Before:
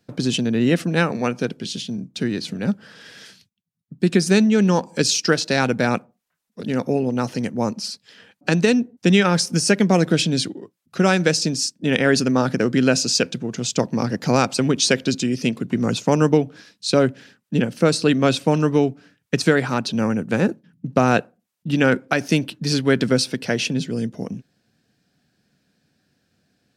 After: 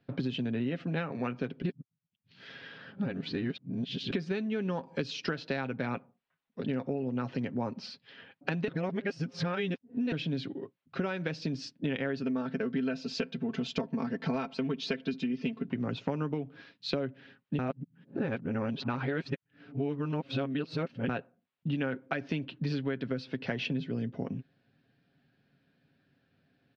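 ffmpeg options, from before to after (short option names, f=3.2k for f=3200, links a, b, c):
-filter_complex "[0:a]asettb=1/sr,asplit=3[a][b][c];[a]atrim=end=12.234[d];[b]atrim=start=12.23:end=15.69,asetpts=PTS-STARTPTS,afade=t=in:d=0.004:c=qsin,afade=t=out:st=3.456:d=0.004:c=qsin,aecho=1:1:4.5:0.77,atrim=end_sample=152586[e];[c]atrim=start=15.686[f];[d][e]acrossfade=d=0.004:c1=hsin:c2=qsin[g];[g][f]acrossfade=d=0.004:c1=qsin:c2=hsin,asplit=7[h][i][j][k][l][m][n];[h]atrim=end=1.622[o];[i]atrim=start=1.618:end=4.112,asetpts=PTS-STARTPTS,areverse[p];[j]atrim=start=4.108:end=8.682[q];[k]atrim=start=8.678:end=10.122,asetpts=PTS-STARTPTS,areverse[r];[l]atrim=start=10.118:end=17.592[s];[m]atrim=start=17.588:end=21.092,asetpts=PTS-STARTPTS,areverse[t];[n]atrim=start=21.088[u];[o][p]acrossfade=d=0.004:c1=hsin:c2=hsin[v];[v][q]acrossfade=d=0.004:c1=hsin:c2=hsin[w];[w][r]acrossfade=d=0.004:c1=hsin:c2=hsin[x];[x][s]acrossfade=d=0.004:c1=hsin:c2=hsin[y];[y][t]acrossfade=d=0.004:c1=hsin:c2=hsin[z];[z][u]acrossfade=d=0.004:c1=hsin:c2=hsin,lowpass=f=3.5k:w=0.5412,lowpass=f=3.5k:w=1.3066,aecho=1:1:7.4:0.42,acompressor=threshold=-25dB:ratio=10,volume=-4dB"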